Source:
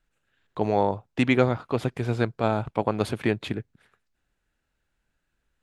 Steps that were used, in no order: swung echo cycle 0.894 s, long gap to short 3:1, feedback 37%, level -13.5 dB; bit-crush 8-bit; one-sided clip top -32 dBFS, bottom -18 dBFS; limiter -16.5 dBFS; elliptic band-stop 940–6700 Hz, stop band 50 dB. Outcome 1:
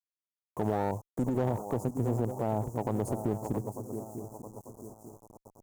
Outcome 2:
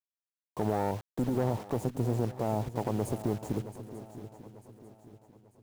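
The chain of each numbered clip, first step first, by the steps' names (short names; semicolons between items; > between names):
swung echo > bit-crush > limiter > elliptic band-stop > one-sided clip; limiter > elliptic band-stop > one-sided clip > bit-crush > swung echo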